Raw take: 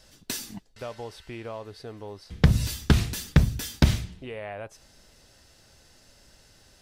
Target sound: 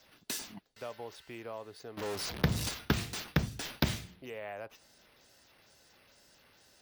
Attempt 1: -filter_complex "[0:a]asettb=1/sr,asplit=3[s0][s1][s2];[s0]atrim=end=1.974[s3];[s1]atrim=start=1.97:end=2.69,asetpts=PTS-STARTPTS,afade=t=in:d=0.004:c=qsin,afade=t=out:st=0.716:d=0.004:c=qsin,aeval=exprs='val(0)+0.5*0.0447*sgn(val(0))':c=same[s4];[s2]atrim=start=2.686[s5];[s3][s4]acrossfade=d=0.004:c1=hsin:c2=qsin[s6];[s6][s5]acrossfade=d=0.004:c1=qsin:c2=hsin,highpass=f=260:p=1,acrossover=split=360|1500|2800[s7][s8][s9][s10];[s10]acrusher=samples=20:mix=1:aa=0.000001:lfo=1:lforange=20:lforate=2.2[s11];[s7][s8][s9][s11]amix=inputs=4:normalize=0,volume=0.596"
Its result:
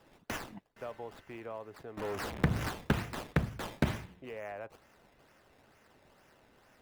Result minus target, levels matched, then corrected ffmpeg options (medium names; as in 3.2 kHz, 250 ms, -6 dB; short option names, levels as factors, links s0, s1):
decimation with a swept rate: distortion +21 dB
-filter_complex "[0:a]asettb=1/sr,asplit=3[s0][s1][s2];[s0]atrim=end=1.974[s3];[s1]atrim=start=1.97:end=2.69,asetpts=PTS-STARTPTS,afade=t=in:d=0.004:c=qsin,afade=t=out:st=0.716:d=0.004:c=qsin,aeval=exprs='val(0)+0.5*0.0447*sgn(val(0))':c=same[s4];[s2]atrim=start=2.686[s5];[s3][s4]acrossfade=d=0.004:c1=hsin:c2=qsin[s6];[s6][s5]acrossfade=d=0.004:c1=qsin:c2=hsin,highpass=f=260:p=1,acrossover=split=360|1500|2800[s7][s8][s9][s10];[s10]acrusher=samples=4:mix=1:aa=0.000001:lfo=1:lforange=4:lforate=2.2[s11];[s7][s8][s9][s11]amix=inputs=4:normalize=0,volume=0.596"